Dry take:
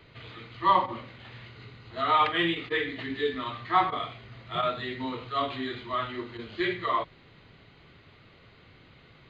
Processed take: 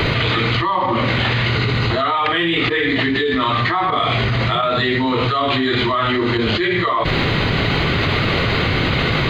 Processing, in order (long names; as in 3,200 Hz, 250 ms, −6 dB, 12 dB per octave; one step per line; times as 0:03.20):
envelope flattener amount 100%